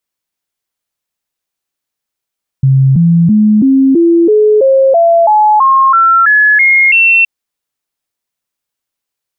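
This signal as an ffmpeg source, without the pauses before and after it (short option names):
-f lavfi -i "aevalsrc='0.631*clip(min(mod(t,0.33),0.33-mod(t,0.33))/0.005,0,1)*sin(2*PI*134*pow(2,floor(t/0.33)/3)*mod(t,0.33))':d=4.62:s=44100"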